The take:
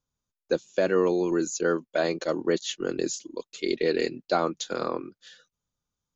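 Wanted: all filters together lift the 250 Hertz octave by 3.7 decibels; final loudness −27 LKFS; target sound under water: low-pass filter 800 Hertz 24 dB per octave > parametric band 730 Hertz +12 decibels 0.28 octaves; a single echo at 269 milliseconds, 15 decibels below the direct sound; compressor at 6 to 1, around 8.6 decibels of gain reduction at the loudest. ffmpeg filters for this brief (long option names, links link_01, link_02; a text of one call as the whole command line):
ffmpeg -i in.wav -af "equalizer=frequency=250:width_type=o:gain=5.5,acompressor=threshold=-26dB:ratio=6,lowpass=frequency=800:width=0.5412,lowpass=frequency=800:width=1.3066,equalizer=frequency=730:width_type=o:width=0.28:gain=12,aecho=1:1:269:0.178,volume=5dB" out.wav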